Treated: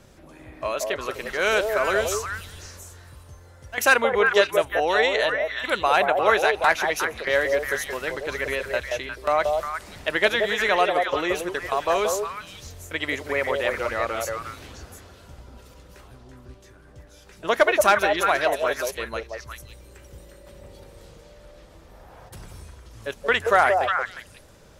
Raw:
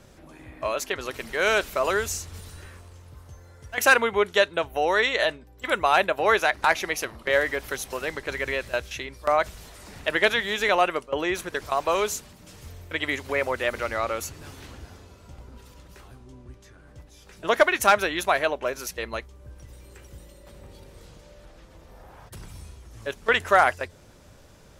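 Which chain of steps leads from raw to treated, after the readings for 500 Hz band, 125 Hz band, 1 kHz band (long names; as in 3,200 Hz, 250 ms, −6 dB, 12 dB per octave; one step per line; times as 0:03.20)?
+2.5 dB, 0.0 dB, +1.5 dB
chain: echo through a band-pass that steps 178 ms, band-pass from 560 Hz, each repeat 1.4 octaves, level −0.5 dB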